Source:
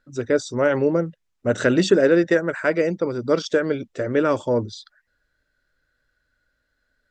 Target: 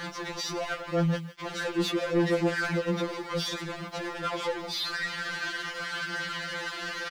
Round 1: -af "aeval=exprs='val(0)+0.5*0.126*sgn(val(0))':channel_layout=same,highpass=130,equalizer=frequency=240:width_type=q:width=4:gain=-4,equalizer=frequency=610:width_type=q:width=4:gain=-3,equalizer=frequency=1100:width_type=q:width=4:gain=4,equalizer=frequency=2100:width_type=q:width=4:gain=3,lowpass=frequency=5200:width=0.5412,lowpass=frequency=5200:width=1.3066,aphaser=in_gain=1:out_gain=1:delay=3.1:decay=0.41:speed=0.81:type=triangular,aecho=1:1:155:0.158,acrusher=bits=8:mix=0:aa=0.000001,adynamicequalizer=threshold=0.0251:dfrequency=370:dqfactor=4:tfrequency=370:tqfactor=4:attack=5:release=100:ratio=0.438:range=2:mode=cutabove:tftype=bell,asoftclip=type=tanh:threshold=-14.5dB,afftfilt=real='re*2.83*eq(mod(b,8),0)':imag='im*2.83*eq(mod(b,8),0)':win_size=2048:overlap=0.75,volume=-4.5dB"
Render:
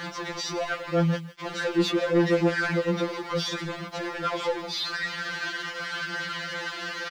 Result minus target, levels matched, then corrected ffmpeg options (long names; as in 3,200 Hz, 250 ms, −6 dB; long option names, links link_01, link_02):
soft clipping: distortion −5 dB
-af "aeval=exprs='val(0)+0.5*0.126*sgn(val(0))':channel_layout=same,highpass=130,equalizer=frequency=240:width_type=q:width=4:gain=-4,equalizer=frequency=610:width_type=q:width=4:gain=-3,equalizer=frequency=1100:width_type=q:width=4:gain=4,equalizer=frequency=2100:width_type=q:width=4:gain=3,lowpass=frequency=5200:width=0.5412,lowpass=frequency=5200:width=1.3066,aphaser=in_gain=1:out_gain=1:delay=3.1:decay=0.41:speed=0.81:type=triangular,aecho=1:1:155:0.158,acrusher=bits=8:mix=0:aa=0.000001,adynamicequalizer=threshold=0.0251:dfrequency=370:dqfactor=4:tfrequency=370:tqfactor=4:attack=5:release=100:ratio=0.438:range=2:mode=cutabove:tftype=bell,asoftclip=type=tanh:threshold=-20.5dB,afftfilt=real='re*2.83*eq(mod(b,8),0)':imag='im*2.83*eq(mod(b,8),0)':win_size=2048:overlap=0.75,volume=-4.5dB"